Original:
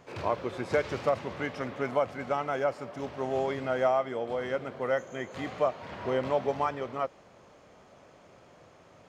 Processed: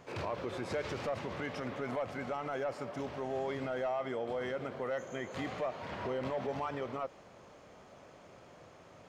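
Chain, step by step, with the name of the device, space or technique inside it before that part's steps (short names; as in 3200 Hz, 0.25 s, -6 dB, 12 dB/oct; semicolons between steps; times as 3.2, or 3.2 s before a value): soft clipper into limiter (soft clip -20 dBFS, distortion -17 dB; limiter -28.5 dBFS, peak gain reduction 8 dB)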